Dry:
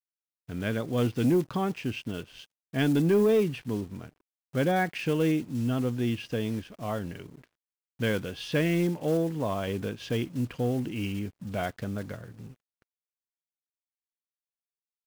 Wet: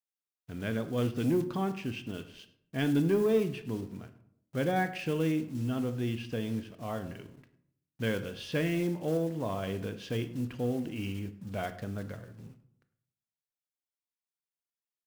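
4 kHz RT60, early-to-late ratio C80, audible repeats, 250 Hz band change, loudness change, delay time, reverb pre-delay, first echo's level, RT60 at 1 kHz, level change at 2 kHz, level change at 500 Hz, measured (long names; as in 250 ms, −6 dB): 0.40 s, 15.5 dB, 1, −3.5 dB, −3.5 dB, 103 ms, 17 ms, −21.5 dB, 0.60 s, −4.0 dB, −4.0 dB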